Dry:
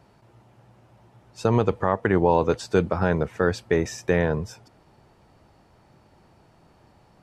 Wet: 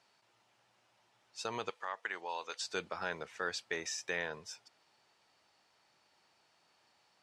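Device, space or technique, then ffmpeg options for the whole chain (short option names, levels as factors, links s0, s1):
piezo pickup straight into a mixer: -filter_complex "[0:a]asettb=1/sr,asplit=3[s0][s1][s2];[s0]atrim=end=1.704[s3];[s1]atrim=start=1.7:end=2.62,asetpts=PTS-STARTPTS,afade=t=in:d=0.004:c=qsin,afade=t=out:st=0.916:d=0.004:c=qsin,highpass=f=1100:p=1[s4];[s2]atrim=start=2.616[s5];[s3][s4]acrossfade=d=0.004:c1=hsin:c2=qsin[s6];[s6][s5]acrossfade=d=0.004:c1=qsin:c2=hsin,lowpass=5000,aderivative,volume=1.68"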